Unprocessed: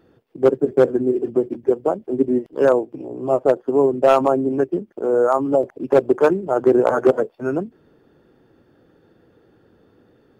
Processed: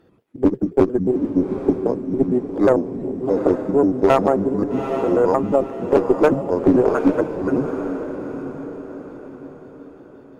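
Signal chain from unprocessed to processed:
pitch shifter gated in a rhythm −5.5 semitones, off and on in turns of 89 ms
harmonic generator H 2 −16 dB, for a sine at −5 dBFS
feedback delay with all-pass diffusion 826 ms, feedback 44%, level −8 dB

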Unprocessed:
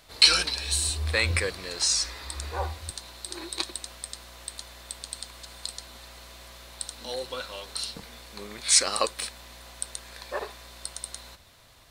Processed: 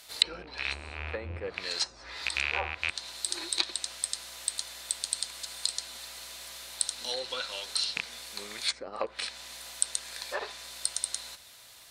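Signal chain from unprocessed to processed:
loose part that buzzes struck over −38 dBFS, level −15 dBFS
notch filter 1,100 Hz, Q 15
treble cut that deepens with the level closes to 500 Hz, closed at −20 dBFS
spectral tilt +3 dB per octave
level −1 dB

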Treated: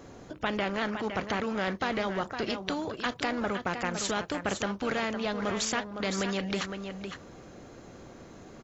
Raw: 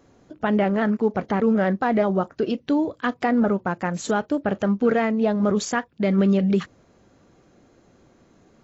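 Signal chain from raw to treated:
single-tap delay 510 ms −13.5 dB
every bin compressed towards the loudest bin 2 to 1
level −3 dB

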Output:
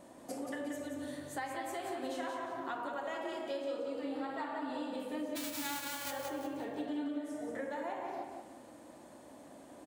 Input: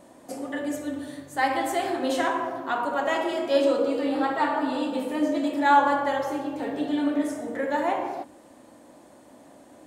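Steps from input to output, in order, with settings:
0:05.35–0:06.10: spectral envelope flattened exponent 0.1
0:06.87–0:07.51: comb filter 6.7 ms
downward compressor 10 to 1, threshold −33 dBFS, peak gain reduction 20.5 dB
repeating echo 179 ms, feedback 35%, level −6 dB
level −4 dB

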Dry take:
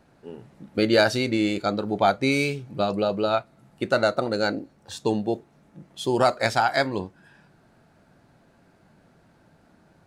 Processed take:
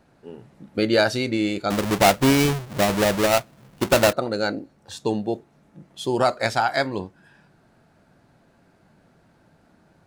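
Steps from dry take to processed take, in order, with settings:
0:01.70–0:04.13: each half-wave held at its own peak

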